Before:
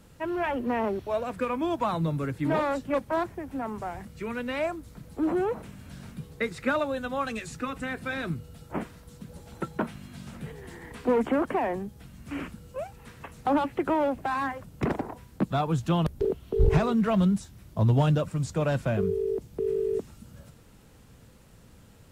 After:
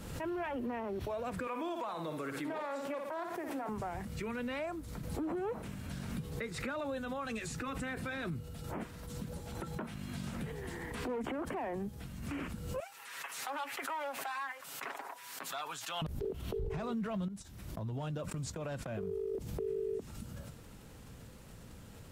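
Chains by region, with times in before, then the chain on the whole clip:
1.47–3.69 HPF 380 Hz + flutter echo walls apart 9.9 m, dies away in 0.35 s
12.8–16.02 HPF 1200 Hz + comb 7.3 ms, depth 52%
17.28–19.35 gate -40 dBFS, range -21 dB + bell 120 Hz -3 dB 1.6 oct + compressor 12:1, threshold -34 dBFS
whole clip: compressor 2:1, threshold -37 dBFS; limiter -32 dBFS; backwards sustainer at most 43 dB/s; gain +1 dB

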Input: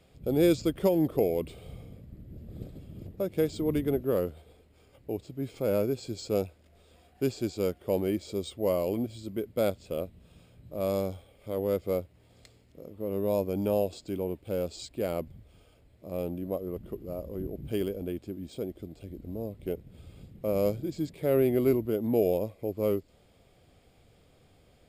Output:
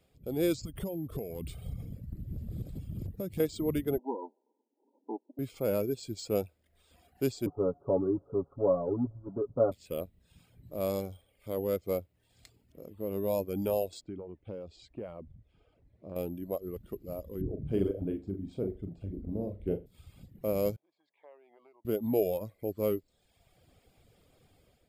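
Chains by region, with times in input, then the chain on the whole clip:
0.63–3.4 tone controls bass +11 dB, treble +5 dB + compressor 16:1, threshold -29 dBFS
3.98–5.39 minimum comb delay 0.77 ms + brick-wall FIR band-pass 220–1000 Hz + notch 710 Hz, Q 5.9
7.46–9.72 G.711 law mismatch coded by mu + steep low-pass 1300 Hz 72 dB/oct + comb 7.2 ms, depth 71%
14.01–16.16 compressor 10:1, threshold -32 dBFS + tape spacing loss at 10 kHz 28 dB
17.41–19.86 LPF 1100 Hz 6 dB/oct + low shelf 280 Hz +7 dB + flutter echo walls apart 7 m, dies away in 0.48 s
20.76–21.85 bell 1400 Hz -13.5 dB 0.25 oct + compressor 12:1, threshold -27 dBFS + ladder band-pass 1100 Hz, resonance 45%
whole clip: reverb removal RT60 0.83 s; high shelf 11000 Hz +8.5 dB; AGC gain up to 7 dB; gain -8.5 dB

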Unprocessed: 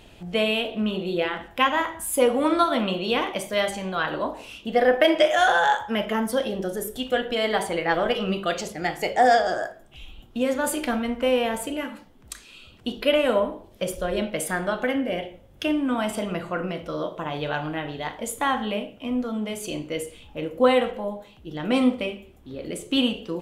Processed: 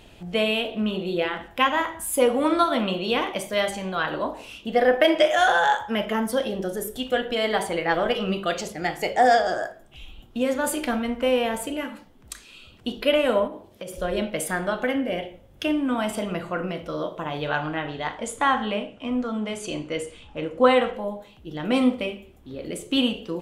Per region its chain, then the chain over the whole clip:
13.47–13.98 HPF 75 Hz + compressor 10:1, threshold -31 dBFS
17.47–20.96 LPF 9400 Hz 24 dB/oct + bell 1300 Hz +4.5 dB 1.2 oct
whole clip: dry

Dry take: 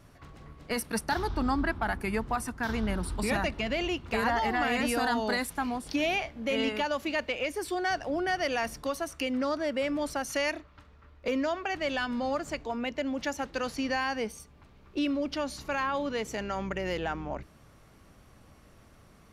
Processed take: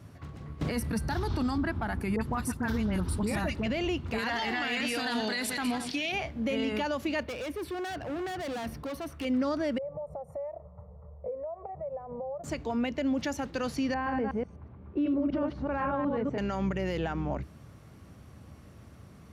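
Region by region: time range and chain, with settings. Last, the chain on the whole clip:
0.61–1.58 de-hum 391.9 Hz, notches 12 + three-band squash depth 100%
2.16–3.66 high shelf 9500 Hz +4.5 dB + notch 710 Hz, Q 17 + dispersion highs, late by 54 ms, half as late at 1700 Hz
4.18–6.12 regenerating reverse delay 0.107 s, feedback 46%, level -12 dB + weighting filter D
7.23–9.25 bell 7200 Hz -15 dB 1.1 oct + hard clip -36 dBFS
9.78–12.44 EQ curve 110 Hz 0 dB, 180 Hz +5 dB, 290 Hz -28 dB, 480 Hz +12 dB, 720 Hz +10 dB, 1800 Hz -2 dB, 2700 Hz -21 dB, 4800 Hz -21 dB, 8400 Hz +5 dB + compressor 4:1, threshold -37 dBFS + running mean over 28 samples
13.94–16.38 reverse delay 0.124 s, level -2 dB + LPF 1300 Hz
whole clip: HPF 68 Hz 24 dB/oct; low shelf 270 Hz +11 dB; limiter -22 dBFS

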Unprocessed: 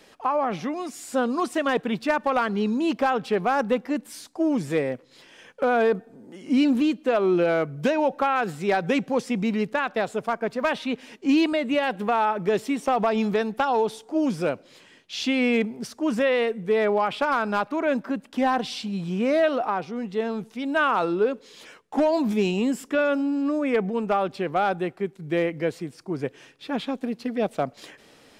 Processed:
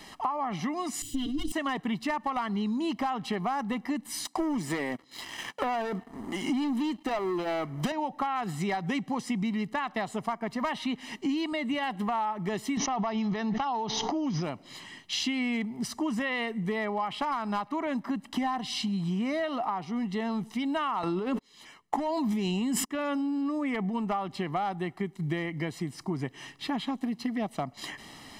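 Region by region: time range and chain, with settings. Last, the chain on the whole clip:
1.02–1.52 minimum comb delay 6.9 ms + EQ curve 120 Hz 0 dB, 210 Hz -12 dB, 310 Hz +7 dB, 580 Hz -27 dB, 1200 Hz -29 dB, 2200 Hz -18 dB, 3100 Hz 0 dB, 4700 Hz -9 dB + sustainer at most 40 dB/s
4.25–7.92 HPF 230 Hz + sample leveller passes 2
12.77–14.44 brick-wall FIR low-pass 6800 Hz + backwards sustainer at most 26 dB/s
21.03–22.9 gate -39 dBFS, range -50 dB + fast leveller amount 100%
whole clip: comb 1 ms, depth 74%; compressor 6:1, threshold -33 dBFS; gain +4.5 dB

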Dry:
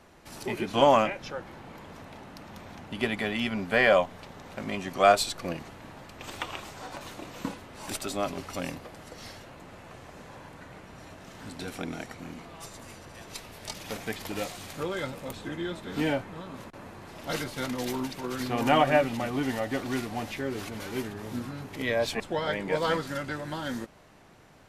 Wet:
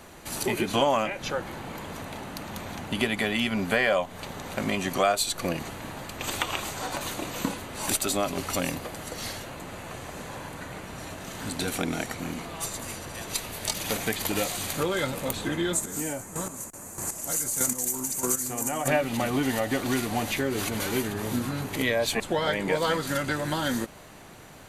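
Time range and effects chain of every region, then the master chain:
15.73–18.88 resonant high shelf 5200 Hz +13 dB, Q 3 + compressor 2:1, threshold -29 dBFS + chopper 1.6 Hz, depth 65%, duty 20%
whole clip: high shelf 5600 Hz +10 dB; notch 5300 Hz, Q 7.8; compressor 3:1, threshold -31 dBFS; gain +7.5 dB

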